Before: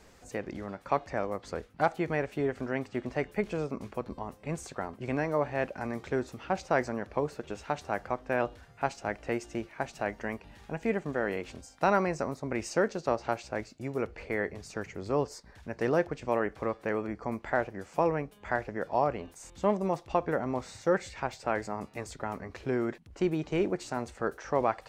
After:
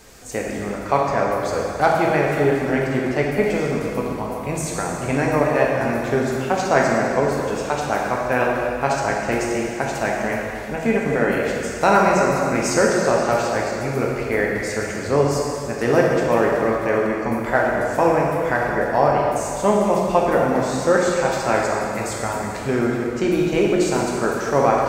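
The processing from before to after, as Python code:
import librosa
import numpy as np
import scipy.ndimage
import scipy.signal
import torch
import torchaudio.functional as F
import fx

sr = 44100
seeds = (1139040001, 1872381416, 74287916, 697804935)

y = fx.high_shelf(x, sr, hz=6000.0, db=10.5)
y = fx.rev_plate(y, sr, seeds[0], rt60_s=2.7, hf_ratio=0.85, predelay_ms=0, drr_db=-3.0)
y = y * 10.0 ** (7.5 / 20.0)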